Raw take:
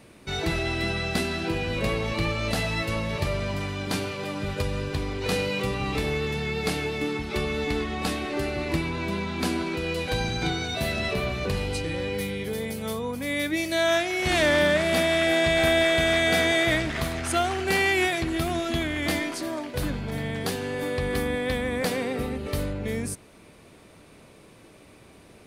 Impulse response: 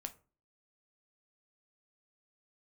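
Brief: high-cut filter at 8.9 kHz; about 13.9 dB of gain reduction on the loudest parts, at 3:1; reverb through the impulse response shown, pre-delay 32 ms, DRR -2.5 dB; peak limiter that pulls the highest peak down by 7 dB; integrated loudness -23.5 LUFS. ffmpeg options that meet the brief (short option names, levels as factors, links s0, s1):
-filter_complex "[0:a]lowpass=8900,acompressor=threshold=0.0126:ratio=3,alimiter=level_in=2:limit=0.0631:level=0:latency=1,volume=0.501,asplit=2[s0][s1];[1:a]atrim=start_sample=2205,adelay=32[s2];[s1][s2]afir=irnorm=-1:irlink=0,volume=1.88[s3];[s0][s3]amix=inputs=2:normalize=0,volume=3.35"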